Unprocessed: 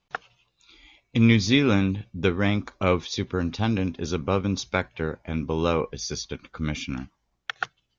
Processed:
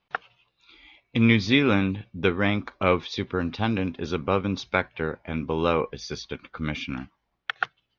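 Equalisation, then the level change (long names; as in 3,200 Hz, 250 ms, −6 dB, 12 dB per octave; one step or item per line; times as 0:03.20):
high-frequency loss of the air 300 metres
spectral tilt +2 dB per octave
+3.5 dB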